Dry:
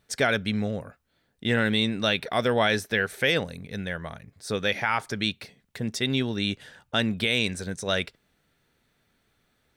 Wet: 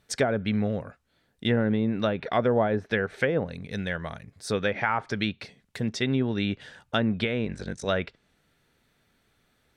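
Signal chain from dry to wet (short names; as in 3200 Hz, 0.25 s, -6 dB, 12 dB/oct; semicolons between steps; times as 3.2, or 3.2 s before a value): treble ducked by the level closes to 820 Hz, closed at -19 dBFS; 7.45–7.85 ring modulator 25 Hz; gain +1.5 dB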